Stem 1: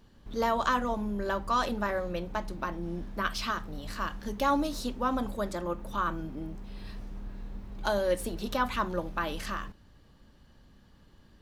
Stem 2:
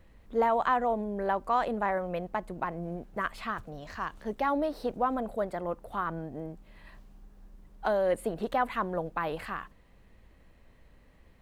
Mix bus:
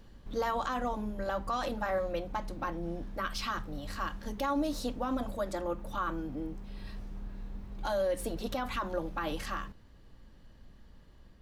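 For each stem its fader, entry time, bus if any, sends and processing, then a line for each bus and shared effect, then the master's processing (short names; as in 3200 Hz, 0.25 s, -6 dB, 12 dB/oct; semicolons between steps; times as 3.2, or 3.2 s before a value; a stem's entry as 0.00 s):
+2.0 dB, 0.00 s, no send, AGC gain up to 6.5 dB; auto duck -11 dB, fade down 0.75 s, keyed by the second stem
-7.0 dB, 0.00 s, no send, tilt -2 dB/oct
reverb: off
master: limiter -23.5 dBFS, peak gain reduction 8.5 dB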